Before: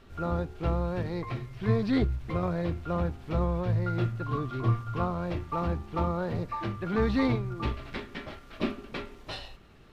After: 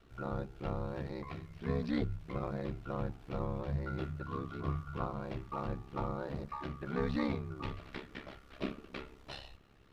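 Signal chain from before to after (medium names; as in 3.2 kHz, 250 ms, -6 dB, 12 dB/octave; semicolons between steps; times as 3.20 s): hum notches 60/120/180 Hz; ring modulator 34 Hz; trim -5 dB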